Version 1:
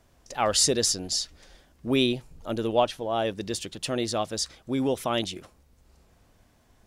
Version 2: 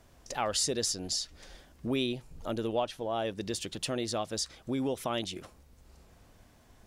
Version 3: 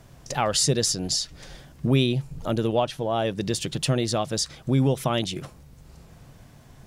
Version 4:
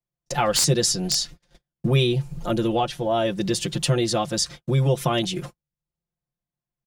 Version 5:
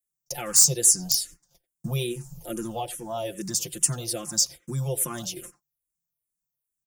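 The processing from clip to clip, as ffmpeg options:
ffmpeg -i in.wav -af "acompressor=threshold=-37dB:ratio=2,volume=2dB" out.wav
ffmpeg -i in.wav -af "equalizer=frequency=140:width_type=o:width=0.5:gain=14.5,volume=7dB" out.wav
ffmpeg -i in.wav -filter_complex "[0:a]agate=range=-44dB:threshold=-38dB:ratio=16:detection=peak,aecho=1:1:5.7:0.85,acrossover=split=100|1700[link_01][link_02][link_03];[link_03]aeval=exprs='(mod(3.35*val(0)+1,2)-1)/3.35':channel_layout=same[link_04];[link_01][link_02][link_04]amix=inputs=3:normalize=0" out.wav
ffmpeg -i in.wav -filter_complex "[0:a]asplit=2[link_01][link_02];[link_02]adelay=90,highpass=300,lowpass=3400,asoftclip=type=hard:threshold=-18dB,volume=-15dB[link_03];[link_01][link_03]amix=inputs=2:normalize=0,aexciter=amount=5.8:drive=8.4:freq=5700,asplit=2[link_04][link_05];[link_05]afreqshift=-2.4[link_06];[link_04][link_06]amix=inputs=2:normalize=1,volume=-7.5dB" out.wav

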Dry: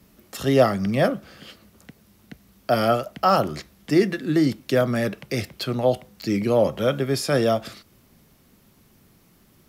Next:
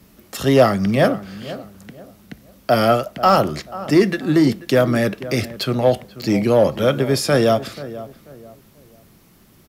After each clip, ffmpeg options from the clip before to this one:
ffmpeg -i in.wav -filter_complex "[0:a]asplit=2[link_01][link_02];[link_02]adelay=487,lowpass=frequency=1400:poles=1,volume=-15.5dB,asplit=2[link_03][link_04];[link_04]adelay=487,lowpass=frequency=1400:poles=1,volume=0.33,asplit=2[link_05][link_06];[link_06]adelay=487,lowpass=frequency=1400:poles=1,volume=0.33[link_07];[link_01][link_03][link_05][link_07]amix=inputs=4:normalize=0,asplit=2[link_08][link_09];[link_09]asoftclip=type=hard:threshold=-16dB,volume=-7dB[link_10];[link_08][link_10]amix=inputs=2:normalize=0,volume=2dB" out.wav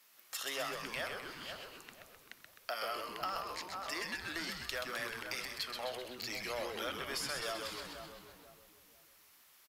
ffmpeg -i in.wav -filter_complex "[0:a]highpass=1200,acompressor=threshold=-29dB:ratio=6,asplit=2[link_01][link_02];[link_02]asplit=8[link_03][link_04][link_05][link_06][link_07][link_08][link_09][link_10];[link_03]adelay=129,afreqshift=-130,volume=-5dB[link_11];[link_04]adelay=258,afreqshift=-260,volume=-9.4dB[link_12];[link_05]adelay=387,afreqshift=-390,volume=-13.9dB[link_13];[link_06]adelay=516,afreqshift=-520,volume=-18.3dB[link_14];[link_07]adelay=645,afreqshift=-650,volume=-22.7dB[link_15];[link_08]adelay=774,afreqshift=-780,volume=-27.2dB[link_16];[link_09]adelay=903,afreqshift=-910,volume=-31.6dB[link_17];[link_10]adelay=1032,afreqshift=-1040,volume=-36.1dB[link_18];[link_11][link_12][link_13][link_14][link_15][link_16][link_17][link_18]amix=inputs=8:normalize=0[link_19];[link_01][link_19]amix=inputs=2:normalize=0,volume=-8dB" out.wav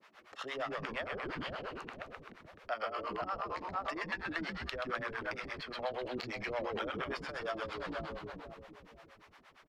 ffmpeg -i in.wav -filter_complex "[0:a]acompressor=threshold=-45dB:ratio=6,acrossover=split=490[link_01][link_02];[link_01]aeval=exprs='val(0)*(1-1/2+1/2*cos(2*PI*8.6*n/s))':channel_layout=same[link_03];[link_02]aeval=exprs='val(0)*(1-1/2-1/2*cos(2*PI*8.6*n/s))':channel_layout=same[link_04];[link_03][link_04]amix=inputs=2:normalize=0,adynamicsmooth=sensitivity=2.5:basefreq=2000,volume=17.5dB" out.wav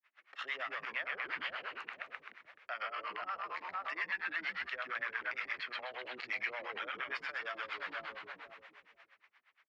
ffmpeg -i in.wav -af "agate=range=-33dB:threshold=-51dB:ratio=3:detection=peak,alimiter=level_in=6dB:limit=-24dB:level=0:latency=1:release=23,volume=-6dB,bandpass=frequency=2100:width_type=q:width=1.8:csg=0,volume=7.5dB" out.wav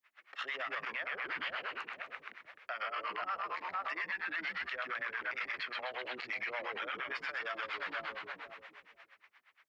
ffmpeg -i in.wav -af "alimiter=level_in=7.5dB:limit=-24dB:level=0:latency=1:release=16,volume=-7.5dB,volume=3.5dB" out.wav

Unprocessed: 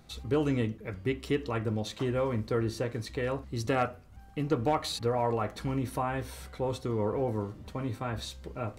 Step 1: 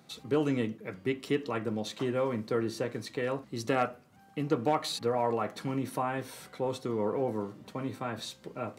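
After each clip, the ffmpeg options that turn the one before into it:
ffmpeg -i in.wav -af "highpass=frequency=140:width=0.5412,highpass=frequency=140:width=1.3066" out.wav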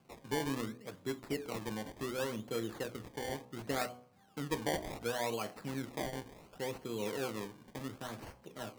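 ffmpeg -i in.wav -af "acrusher=samples=23:mix=1:aa=0.000001:lfo=1:lforange=23:lforate=0.69,bandreject=frequency=61.65:width_type=h:width=4,bandreject=frequency=123.3:width_type=h:width=4,bandreject=frequency=184.95:width_type=h:width=4,bandreject=frequency=246.6:width_type=h:width=4,bandreject=frequency=308.25:width_type=h:width=4,bandreject=frequency=369.9:width_type=h:width=4,bandreject=frequency=431.55:width_type=h:width=4,bandreject=frequency=493.2:width_type=h:width=4,bandreject=frequency=554.85:width_type=h:width=4,bandreject=frequency=616.5:width_type=h:width=4,bandreject=frequency=678.15:width_type=h:width=4,bandreject=frequency=739.8:width_type=h:width=4,bandreject=frequency=801.45:width_type=h:width=4,bandreject=frequency=863.1:width_type=h:width=4,bandreject=frequency=924.75:width_type=h:width=4,bandreject=frequency=986.4:width_type=h:width=4,bandreject=frequency=1048.05:width_type=h:width=4,bandreject=frequency=1109.7:width_type=h:width=4,bandreject=frequency=1171.35:width_type=h:width=4,bandreject=frequency=1233:width_type=h:width=4,volume=-7dB" out.wav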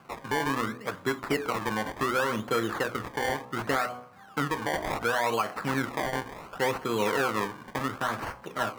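ffmpeg -i in.wav -af "equalizer=frequency=1300:width_type=o:width=1.5:gain=13,alimiter=level_in=0.5dB:limit=-24dB:level=0:latency=1:release=171,volume=-0.5dB,volume=8.5dB" out.wav

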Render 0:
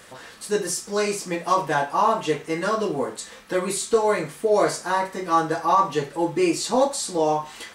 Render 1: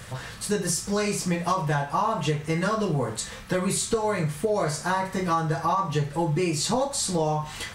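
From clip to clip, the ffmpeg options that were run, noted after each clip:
ffmpeg -i in.wav -af "lowshelf=frequency=190:width_type=q:width=1.5:gain=13,acompressor=threshold=-25dB:ratio=6,volume=3.5dB" out.wav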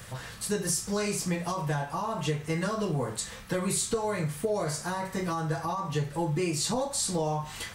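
ffmpeg -i in.wav -filter_complex "[0:a]highshelf=frequency=11000:gain=7.5,acrossover=split=560|3700[link_01][link_02][link_03];[link_02]alimiter=limit=-23dB:level=0:latency=1[link_04];[link_01][link_04][link_03]amix=inputs=3:normalize=0,volume=-4dB" out.wav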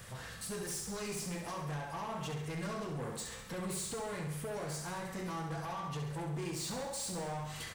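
ffmpeg -i in.wav -af "asoftclip=type=tanh:threshold=-32.5dB,aecho=1:1:67|134|201|268|335|402|469:0.447|0.25|0.14|0.0784|0.0439|0.0246|0.0138,volume=-5dB" out.wav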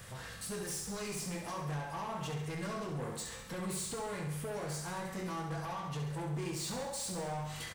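ffmpeg -i in.wav -filter_complex "[0:a]asplit=2[link_01][link_02];[link_02]adelay=21,volume=-11dB[link_03];[link_01][link_03]amix=inputs=2:normalize=0" out.wav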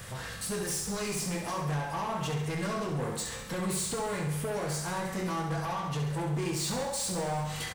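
ffmpeg -i in.wav -af "aecho=1:1:339:0.0841,volume=6.5dB" out.wav

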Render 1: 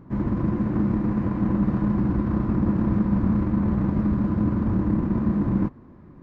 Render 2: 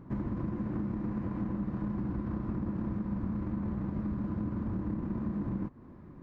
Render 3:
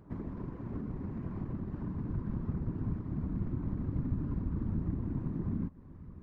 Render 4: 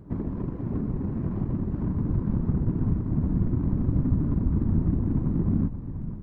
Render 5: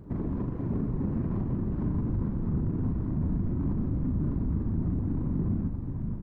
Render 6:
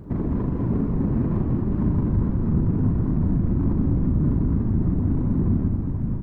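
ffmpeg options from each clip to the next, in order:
ffmpeg -i in.wav -af "acompressor=threshold=-28dB:ratio=6,volume=-3dB" out.wav
ffmpeg -i in.wav -af "asubboost=boost=4.5:cutoff=160,afftfilt=real='hypot(re,im)*cos(2*PI*random(0))':imag='hypot(re,im)*sin(2*PI*random(1))':win_size=512:overlap=0.75" out.wav
ffmpeg -i in.wav -filter_complex "[0:a]asplit=2[link_01][link_02];[link_02]adynamicsmooth=sensitivity=6.5:basefreq=510,volume=2.5dB[link_03];[link_01][link_03]amix=inputs=2:normalize=0,asplit=7[link_04][link_05][link_06][link_07][link_08][link_09][link_10];[link_05]adelay=480,afreqshift=-41,volume=-11dB[link_11];[link_06]adelay=960,afreqshift=-82,volume=-16.2dB[link_12];[link_07]adelay=1440,afreqshift=-123,volume=-21.4dB[link_13];[link_08]adelay=1920,afreqshift=-164,volume=-26.6dB[link_14];[link_09]adelay=2400,afreqshift=-205,volume=-31.8dB[link_15];[link_10]adelay=2880,afreqshift=-246,volume=-37dB[link_16];[link_04][link_11][link_12][link_13][link_14][link_15][link_16]amix=inputs=7:normalize=0,volume=2.5dB" out.wav
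ffmpeg -i in.wav -filter_complex "[0:a]alimiter=limit=-22.5dB:level=0:latency=1:release=42,asplit=2[link_01][link_02];[link_02]adelay=40,volume=-7dB[link_03];[link_01][link_03]amix=inputs=2:normalize=0" out.wav
ffmpeg -i in.wav -af "aecho=1:1:202:0.473,volume=6.5dB" out.wav

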